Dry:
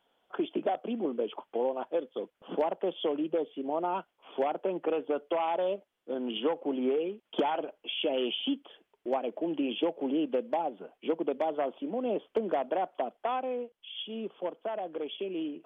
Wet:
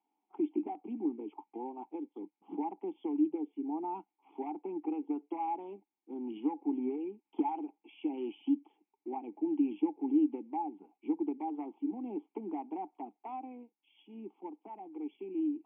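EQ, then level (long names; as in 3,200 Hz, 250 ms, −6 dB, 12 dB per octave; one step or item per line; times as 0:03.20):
dynamic equaliser 300 Hz, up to +5 dB, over −41 dBFS, Q 1.3
formant filter u
loudspeaker in its box 120–2,900 Hz, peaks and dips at 200 Hz +8 dB, 390 Hz +5 dB, 790 Hz +8 dB
−1.5 dB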